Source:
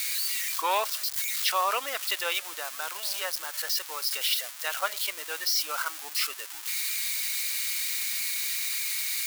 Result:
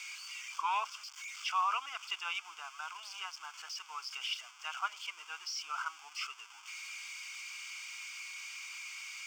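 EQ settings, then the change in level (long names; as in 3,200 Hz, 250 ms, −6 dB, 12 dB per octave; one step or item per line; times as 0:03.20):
high-pass filter 890 Hz 12 dB per octave
head-to-tape spacing loss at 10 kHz 20 dB
phaser with its sweep stopped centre 2,700 Hz, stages 8
0.0 dB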